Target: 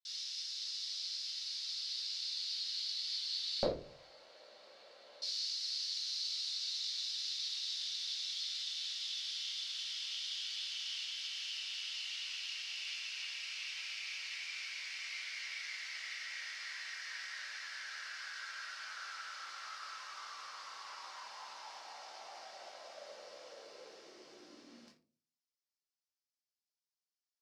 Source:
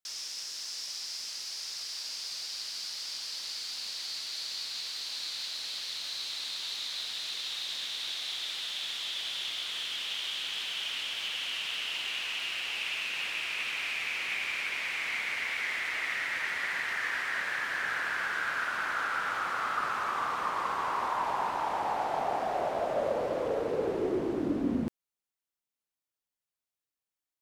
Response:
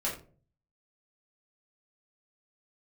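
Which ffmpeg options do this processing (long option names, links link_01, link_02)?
-filter_complex "[0:a]asetnsamples=nb_out_samples=441:pad=0,asendcmd='3.63 bandpass f 540;5.22 bandpass f 5100',bandpass=frequency=3900:width_type=q:width=3.6:csg=0[link_01];[1:a]atrim=start_sample=2205[link_02];[link_01][link_02]afir=irnorm=-1:irlink=0"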